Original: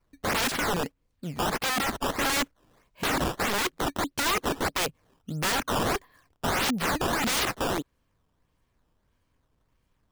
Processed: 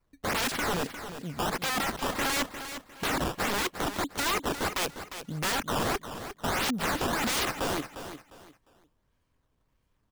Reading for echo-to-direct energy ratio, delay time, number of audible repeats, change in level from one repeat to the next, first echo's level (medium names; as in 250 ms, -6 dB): -10.0 dB, 353 ms, 3, -11.5 dB, -10.5 dB